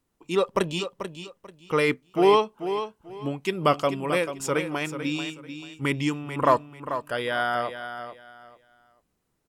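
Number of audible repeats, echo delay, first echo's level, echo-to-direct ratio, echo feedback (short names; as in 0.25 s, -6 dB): 3, 0.439 s, -10.0 dB, -9.5 dB, 24%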